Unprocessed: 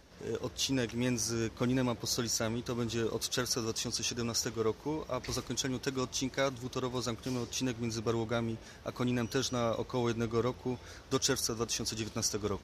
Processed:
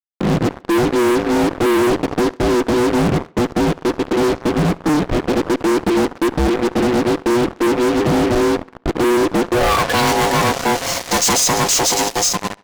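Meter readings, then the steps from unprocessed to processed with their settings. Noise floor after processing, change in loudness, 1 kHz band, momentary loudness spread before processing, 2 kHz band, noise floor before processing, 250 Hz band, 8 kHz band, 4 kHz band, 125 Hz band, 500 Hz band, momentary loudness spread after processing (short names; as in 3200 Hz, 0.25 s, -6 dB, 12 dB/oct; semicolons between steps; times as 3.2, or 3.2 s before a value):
-44 dBFS, +17.0 dB, +22.0 dB, 5 LU, +19.0 dB, -52 dBFS, +18.5 dB, +14.5 dB, +13.0 dB, +14.0 dB, +18.0 dB, 5 LU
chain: ending faded out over 0.92 s; ring modulator 610 Hz; low-pass sweep 330 Hz -> 7400 Hz, 9.5–10.11; fuzz box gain 52 dB, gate -51 dBFS; on a send: tape echo 69 ms, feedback 47%, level -22 dB, low-pass 5400 Hz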